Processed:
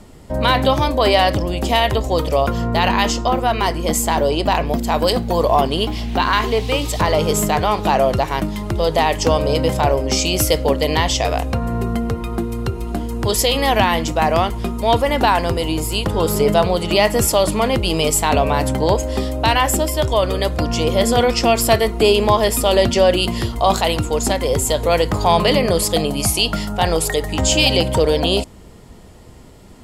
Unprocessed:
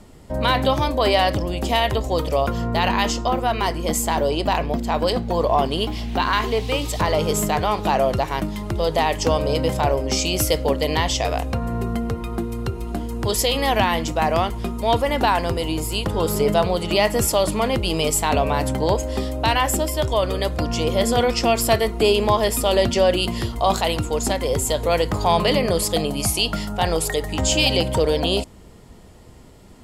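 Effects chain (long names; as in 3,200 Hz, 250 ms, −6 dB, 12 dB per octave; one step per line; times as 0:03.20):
0:04.66–0:05.61: high-shelf EQ 8,100 Hz +11 dB
level +3.5 dB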